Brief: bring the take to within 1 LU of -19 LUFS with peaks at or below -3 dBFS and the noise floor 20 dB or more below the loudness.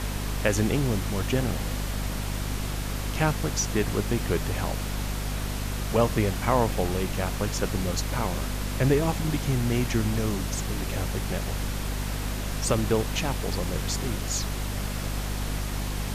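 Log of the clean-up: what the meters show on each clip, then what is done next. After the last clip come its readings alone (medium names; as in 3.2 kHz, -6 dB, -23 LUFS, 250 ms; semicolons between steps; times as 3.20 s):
hum 50 Hz; highest harmonic 250 Hz; hum level -28 dBFS; noise floor -31 dBFS; noise floor target -48 dBFS; loudness -28.0 LUFS; peak level -9.5 dBFS; loudness target -19.0 LUFS
-> hum notches 50/100/150/200/250 Hz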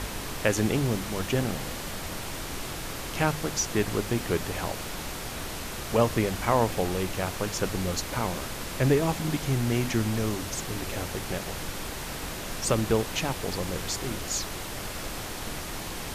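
hum not found; noise floor -36 dBFS; noise floor target -50 dBFS
-> noise print and reduce 14 dB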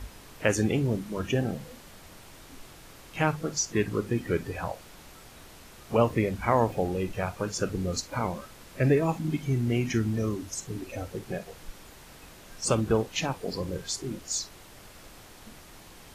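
noise floor -50 dBFS; loudness -29.0 LUFS; peak level -10.0 dBFS; loudness target -19.0 LUFS
-> trim +10 dB; peak limiter -3 dBFS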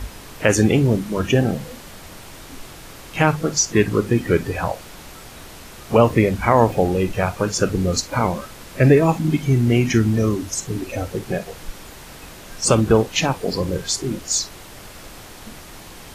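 loudness -19.5 LUFS; peak level -3.0 dBFS; noise floor -40 dBFS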